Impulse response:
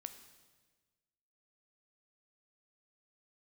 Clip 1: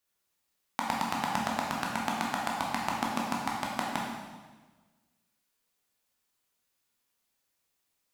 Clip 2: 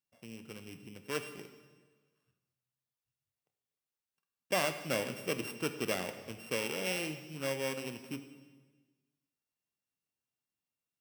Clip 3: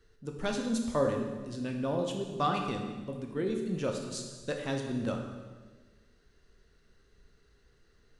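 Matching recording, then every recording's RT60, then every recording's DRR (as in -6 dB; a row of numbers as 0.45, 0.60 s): 2; 1.4, 1.4, 1.4 s; -3.0, 8.5, 2.0 dB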